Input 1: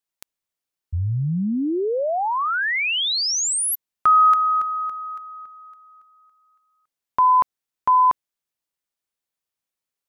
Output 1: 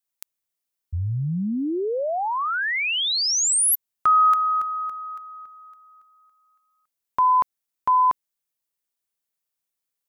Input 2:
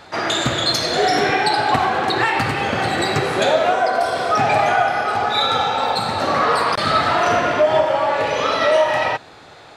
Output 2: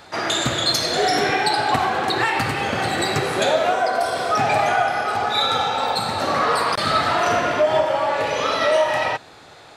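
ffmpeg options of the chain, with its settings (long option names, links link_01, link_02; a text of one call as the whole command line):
ffmpeg -i in.wav -af "highshelf=frequency=7500:gain=8.5,volume=-2.5dB" out.wav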